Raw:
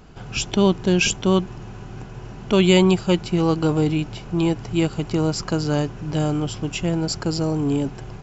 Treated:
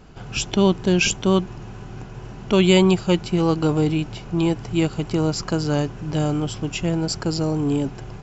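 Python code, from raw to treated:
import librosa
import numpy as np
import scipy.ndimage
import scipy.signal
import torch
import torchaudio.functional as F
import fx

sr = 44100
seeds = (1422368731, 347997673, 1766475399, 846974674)

y = fx.wow_flutter(x, sr, seeds[0], rate_hz=2.1, depth_cents=19.0)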